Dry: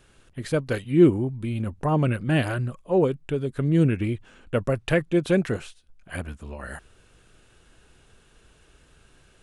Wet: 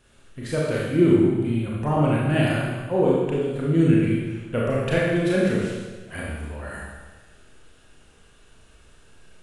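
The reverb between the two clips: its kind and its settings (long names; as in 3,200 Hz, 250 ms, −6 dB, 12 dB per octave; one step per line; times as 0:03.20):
four-comb reverb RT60 1.3 s, combs from 27 ms, DRR −5 dB
level −3.5 dB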